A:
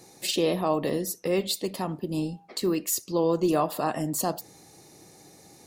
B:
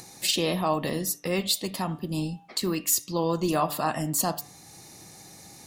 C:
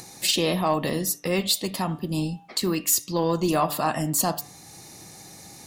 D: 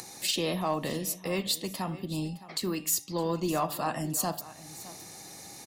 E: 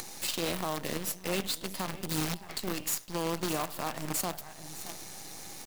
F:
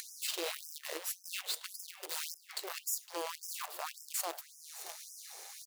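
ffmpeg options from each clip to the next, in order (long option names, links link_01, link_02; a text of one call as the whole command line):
ffmpeg -i in.wav -af "equalizer=frequency=420:width=1.1:gain=-9,bandreject=frequency=146.3:width_type=h:width=4,bandreject=frequency=292.6:width_type=h:width=4,bandreject=frequency=438.9:width_type=h:width=4,bandreject=frequency=585.2:width_type=h:width=4,bandreject=frequency=731.5:width_type=h:width=4,bandreject=frequency=877.8:width_type=h:width=4,bandreject=frequency=1024.1:width_type=h:width=4,bandreject=frequency=1170.4:width_type=h:width=4,bandreject=frequency=1316.7:width_type=h:width=4,bandreject=frequency=1463:width_type=h:width=4,bandreject=frequency=1609.3:width_type=h:width=4,bandreject=frequency=1755.6:width_type=h:width=4,bandreject=frequency=1901.9:width_type=h:width=4,bandreject=frequency=2048.2:width_type=h:width=4,bandreject=frequency=2194.5:width_type=h:width=4,bandreject=frequency=2340.8:width_type=h:width=4,bandreject=frequency=2487.1:width_type=h:width=4,bandreject=frequency=2633.4:width_type=h:width=4,bandreject=frequency=2779.7:width_type=h:width=4,bandreject=frequency=2926:width_type=h:width=4,bandreject=frequency=3072.3:width_type=h:width=4,bandreject=frequency=3218.6:width_type=h:width=4,bandreject=frequency=3364.9:width_type=h:width=4,bandreject=frequency=3511.2:width_type=h:width=4,bandreject=frequency=3657.5:width_type=h:width=4,bandreject=frequency=3803.8:width_type=h:width=4,acompressor=mode=upward:threshold=-46dB:ratio=2.5,volume=4dB" out.wav
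ffmpeg -i in.wav -af "asoftclip=type=tanh:threshold=-11.5dB,volume=3dB" out.wav
ffmpeg -i in.wav -filter_complex "[0:a]acrossover=split=260[link_01][link_02];[link_02]acompressor=mode=upward:threshold=-32dB:ratio=2.5[link_03];[link_01][link_03]amix=inputs=2:normalize=0,aecho=1:1:614:0.141,volume=-6.5dB" out.wav
ffmpeg -i in.wav -filter_complex "[0:a]asplit=2[link_01][link_02];[link_02]aeval=exprs='(mod(42.2*val(0)+1,2)-1)/42.2':channel_layout=same,volume=-4dB[link_03];[link_01][link_03]amix=inputs=2:normalize=0,alimiter=limit=-23.5dB:level=0:latency=1:release=375,acrusher=bits=6:dc=4:mix=0:aa=0.000001,volume=1dB" out.wav
ffmpeg -i in.wav -af "afftfilt=real='re*gte(b*sr/1024,330*pow(5100/330,0.5+0.5*sin(2*PI*1.8*pts/sr)))':imag='im*gte(b*sr/1024,330*pow(5100/330,0.5+0.5*sin(2*PI*1.8*pts/sr)))':win_size=1024:overlap=0.75,volume=-3.5dB" out.wav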